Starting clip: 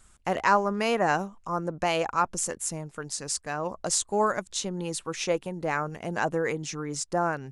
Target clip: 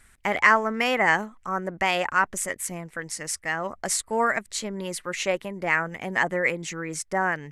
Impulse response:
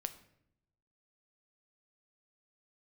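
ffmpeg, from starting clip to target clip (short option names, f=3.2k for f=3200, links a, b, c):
-af "asetrate=48091,aresample=44100,atempo=0.917004,equalizer=f=2k:w=2.4:g=12.5"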